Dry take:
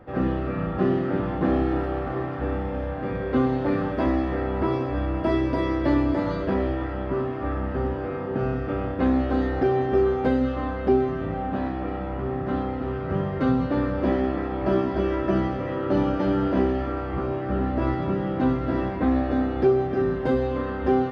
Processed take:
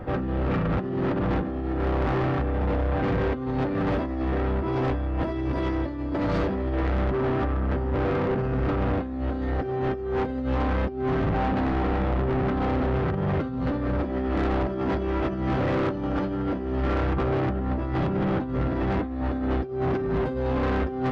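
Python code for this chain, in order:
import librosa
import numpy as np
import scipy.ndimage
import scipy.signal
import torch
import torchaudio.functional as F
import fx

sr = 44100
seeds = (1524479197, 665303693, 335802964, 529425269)

y = fx.low_shelf(x, sr, hz=170.0, db=6.5)
y = fx.over_compress(y, sr, threshold_db=-25.0, ratio=-0.5)
y = 10.0 ** (-27.5 / 20.0) * np.tanh(y / 10.0 ** (-27.5 / 20.0))
y = y * librosa.db_to_amplitude(6.0)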